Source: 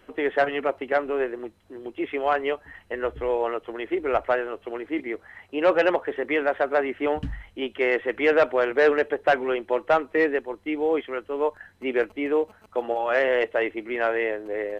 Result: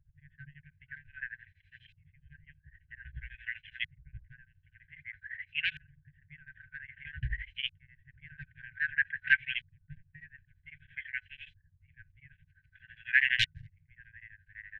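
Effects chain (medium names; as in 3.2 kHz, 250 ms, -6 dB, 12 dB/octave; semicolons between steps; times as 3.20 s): 13.39–13.85 s: integer overflow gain 19 dB; LFO low-pass saw up 0.52 Hz 230–3400 Hz; FFT band-reject 160–1500 Hz; tremolo of two beating tones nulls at 12 Hz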